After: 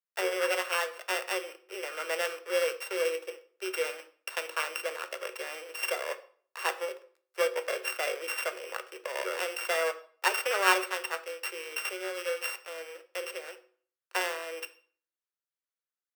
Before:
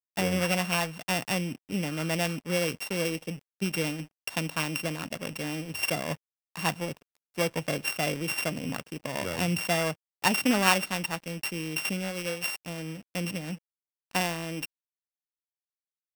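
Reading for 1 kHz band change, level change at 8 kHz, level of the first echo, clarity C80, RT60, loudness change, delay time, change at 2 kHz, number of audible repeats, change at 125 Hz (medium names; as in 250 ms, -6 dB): -1.0 dB, -4.0 dB, no echo, 19.0 dB, 0.50 s, -2.5 dB, no echo, -0.5 dB, no echo, under -40 dB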